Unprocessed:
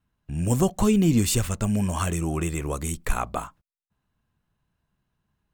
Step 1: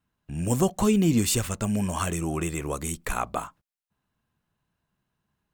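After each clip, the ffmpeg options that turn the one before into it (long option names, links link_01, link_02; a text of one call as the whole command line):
ffmpeg -i in.wav -af "lowshelf=frequency=92:gain=-9.5" out.wav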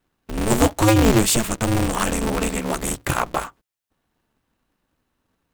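ffmpeg -i in.wav -af "aeval=exprs='val(0)*sgn(sin(2*PI*110*n/s))':channel_layout=same,volume=6dB" out.wav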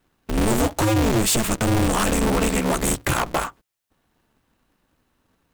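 ffmpeg -i in.wav -af "acompressor=threshold=-18dB:ratio=6,volume=21dB,asoftclip=hard,volume=-21dB,volume=5dB" out.wav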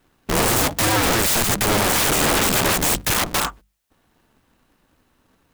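ffmpeg -i in.wav -af "bandreject=frequency=50:width_type=h:width=6,bandreject=frequency=100:width_type=h:width=6,bandreject=frequency=150:width_type=h:width=6,bandreject=frequency=200:width_type=h:width=6,aeval=exprs='(mod(9.44*val(0)+1,2)-1)/9.44':channel_layout=same,volume=5.5dB" out.wav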